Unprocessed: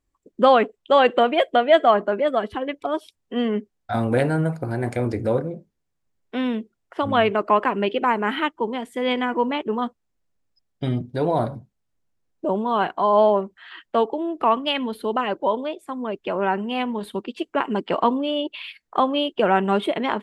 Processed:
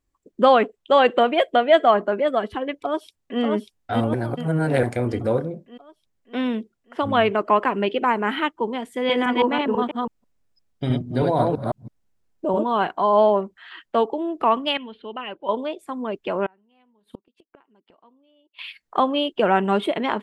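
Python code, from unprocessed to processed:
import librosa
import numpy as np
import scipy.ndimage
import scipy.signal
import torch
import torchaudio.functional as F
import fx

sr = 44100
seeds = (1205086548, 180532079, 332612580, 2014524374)

y = fx.echo_throw(x, sr, start_s=2.71, length_s=0.7, ms=590, feedback_pct=55, wet_db=-3.0)
y = fx.reverse_delay(y, sr, ms=164, wet_db=-1, at=(8.93, 12.67))
y = fx.ladder_lowpass(y, sr, hz=3300.0, resonance_pct=60, at=(14.77, 15.49))
y = fx.gate_flip(y, sr, shuts_db=-23.0, range_db=-36, at=(16.46, 18.59))
y = fx.edit(y, sr, fx.reverse_span(start_s=4.14, length_s=0.69), tone=tone)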